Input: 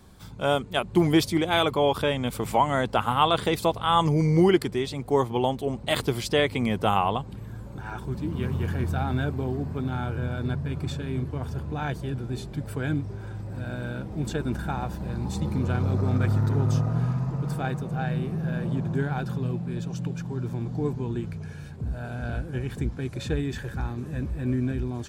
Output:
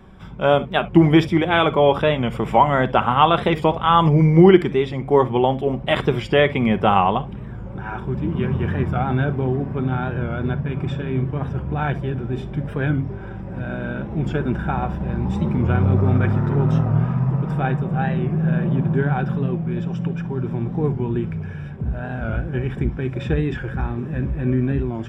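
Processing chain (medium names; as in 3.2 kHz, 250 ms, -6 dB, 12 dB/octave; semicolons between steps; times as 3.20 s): Savitzky-Golay filter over 25 samples; on a send at -10 dB: reverberation, pre-delay 5 ms; on the sum: warped record 45 rpm, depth 100 cents; trim +6.5 dB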